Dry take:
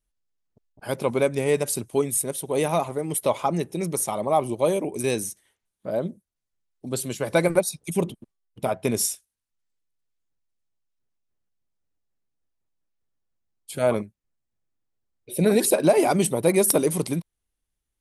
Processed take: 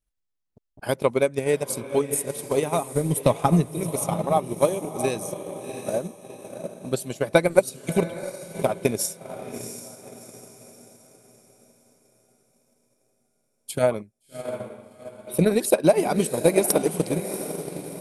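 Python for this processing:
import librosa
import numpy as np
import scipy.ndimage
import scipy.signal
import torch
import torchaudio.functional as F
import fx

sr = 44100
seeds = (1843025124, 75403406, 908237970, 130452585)

y = fx.bass_treble(x, sr, bass_db=13, treble_db=2, at=(2.95, 3.73))
y = fx.echo_diffused(y, sr, ms=701, feedback_pct=43, wet_db=-7.5)
y = fx.transient(y, sr, attack_db=9, sustain_db=-4)
y = y * librosa.db_to_amplitude(-4.0)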